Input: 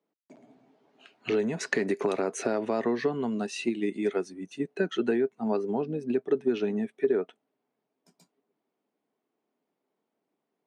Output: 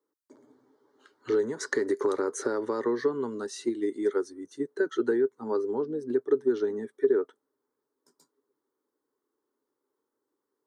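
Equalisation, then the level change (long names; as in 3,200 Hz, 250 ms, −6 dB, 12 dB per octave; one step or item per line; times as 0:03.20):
phaser with its sweep stopped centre 690 Hz, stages 6
+2.0 dB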